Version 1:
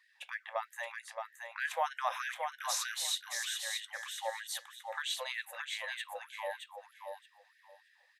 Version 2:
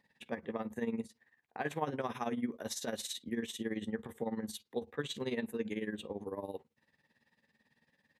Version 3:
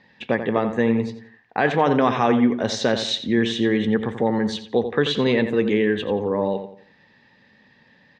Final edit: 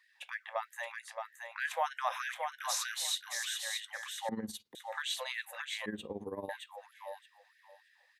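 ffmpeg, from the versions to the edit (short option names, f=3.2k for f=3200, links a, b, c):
-filter_complex "[1:a]asplit=2[a][b];[0:a]asplit=3[c][d][e];[c]atrim=end=4.292[f];[a]atrim=start=4.288:end=4.752[g];[d]atrim=start=4.748:end=5.862[h];[b]atrim=start=5.858:end=6.492[i];[e]atrim=start=6.488[j];[f][g]acrossfade=d=0.004:c1=hsin:c2=hsin[k];[k][h]acrossfade=d=0.004:c1=hsin:c2=hsin[l];[l][i]acrossfade=d=0.004:c1=hsin:c2=hsin[m];[m][j]acrossfade=d=0.004:c1=hsin:c2=hsin"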